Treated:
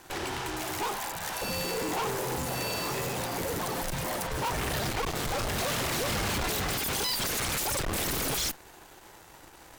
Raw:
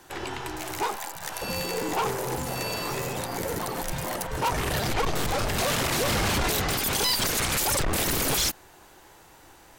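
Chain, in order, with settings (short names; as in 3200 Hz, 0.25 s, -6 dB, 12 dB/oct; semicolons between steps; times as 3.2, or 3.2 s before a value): overloaded stage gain 28.5 dB; added harmonics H 6 -11 dB, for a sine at -28 dBFS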